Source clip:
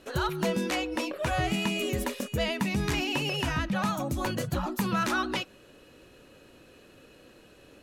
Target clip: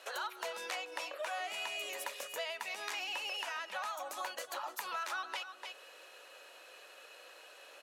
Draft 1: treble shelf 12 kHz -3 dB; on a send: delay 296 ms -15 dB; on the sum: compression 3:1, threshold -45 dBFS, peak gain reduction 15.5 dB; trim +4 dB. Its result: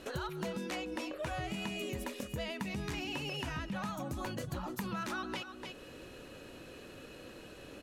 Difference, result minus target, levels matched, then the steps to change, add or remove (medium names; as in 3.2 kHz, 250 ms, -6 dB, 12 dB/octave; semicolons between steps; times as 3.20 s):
500 Hz band +4.0 dB
add first: high-pass 610 Hz 24 dB/octave